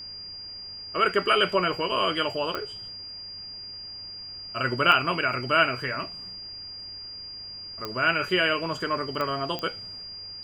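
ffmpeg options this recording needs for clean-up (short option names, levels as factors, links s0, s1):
-af "adeclick=t=4,bandreject=f=96.3:t=h:w=4,bandreject=f=192.6:t=h:w=4,bandreject=f=288.9:t=h:w=4,bandreject=f=385.2:t=h:w=4,bandreject=f=481.5:t=h:w=4,bandreject=f=4800:w=30,agate=range=0.0891:threshold=0.0251"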